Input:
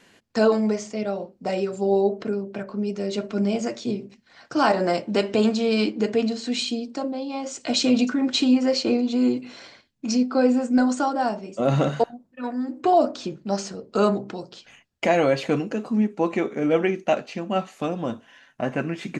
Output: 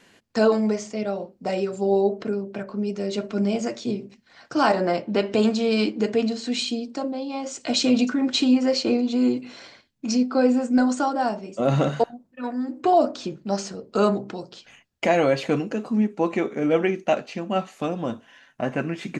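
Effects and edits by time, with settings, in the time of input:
4.8–5.32 air absorption 110 m

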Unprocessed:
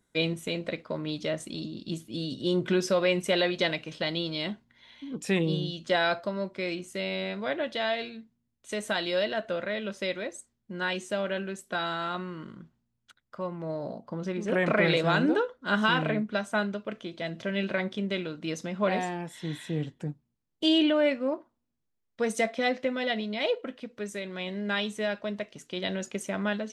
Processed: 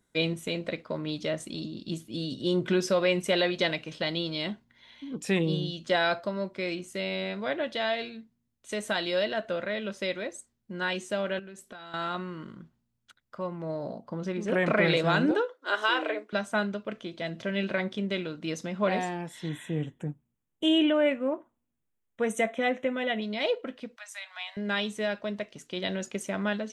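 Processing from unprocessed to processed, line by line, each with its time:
11.39–11.94 compressor 10:1, threshold -41 dBFS
15.31–16.33 Chebyshev high-pass 310 Hz, order 5
19.49–23.22 Butterworth band-stop 4700 Hz, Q 1.6
23.96–24.57 steep high-pass 660 Hz 96 dB/oct

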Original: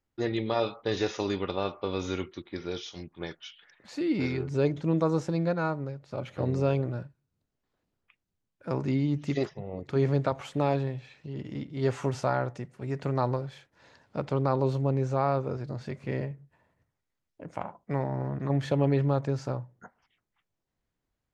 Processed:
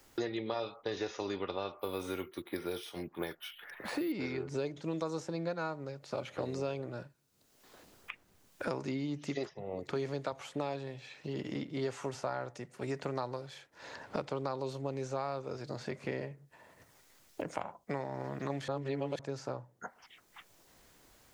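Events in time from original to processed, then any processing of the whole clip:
1.79–4.12 careless resampling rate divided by 3×, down none, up hold
18.68–19.19 reverse
whole clip: tone controls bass -9 dB, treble +5 dB; three-band squash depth 100%; gain -6.5 dB

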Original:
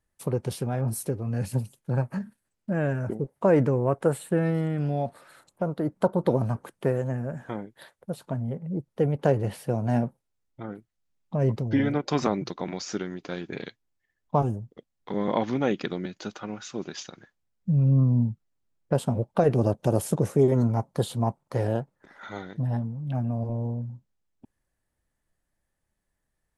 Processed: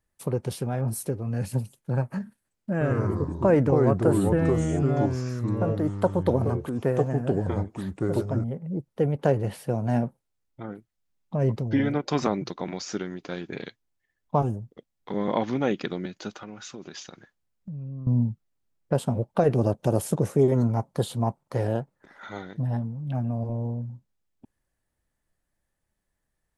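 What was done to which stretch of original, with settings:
2.72–8.44 echoes that change speed 88 ms, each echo -4 st, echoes 2
16.31–18.07 compressor, threshold -35 dBFS

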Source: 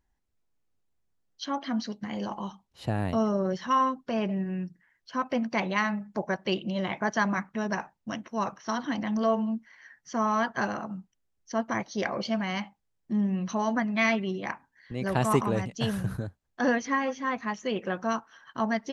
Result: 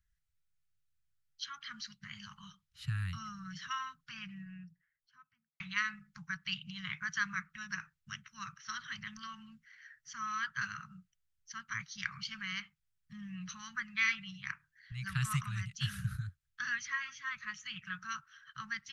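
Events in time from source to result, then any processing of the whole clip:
4–5.6 studio fade out
whole clip: Chebyshev band-stop 160–1300 Hz, order 4; gain -3 dB

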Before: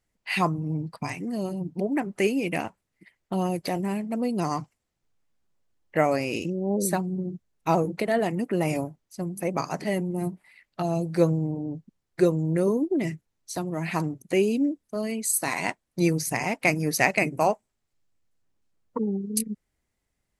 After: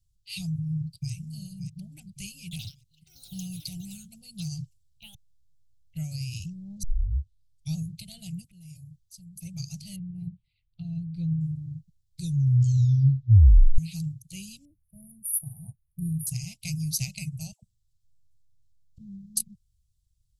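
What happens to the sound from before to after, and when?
0.62–1.12 echo throw 0.57 s, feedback 35%, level -10 dB
2.41–6.14 echoes that change speed 0.101 s, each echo +6 st, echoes 2, each echo -6 dB
6.83 tape start 0.92 s
8.44–9.41 compressor 5:1, threshold -38 dBFS
9.96–11.41 air absorption 430 m
12.2 tape stop 1.58 s
14.65–16.27 brick-wall FIR band-stop 990–8900 Hz
17.52–18.98 dispersion lows, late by 0.105 s, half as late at 930 Hz
whole clip: inverse Chebyshev band-stop 240–1900 Hz, stop band 40 dB; low shelf 350 Hz +10.5 dB

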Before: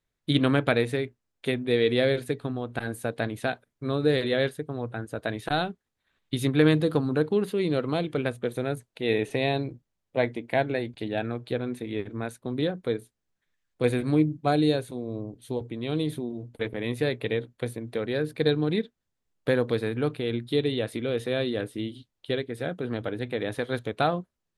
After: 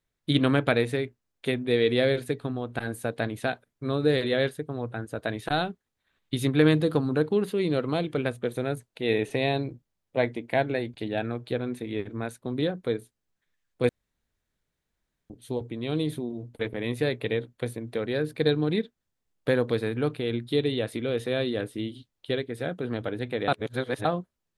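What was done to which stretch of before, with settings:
13.89–15.3 room tone
23.48–24.05 reverse

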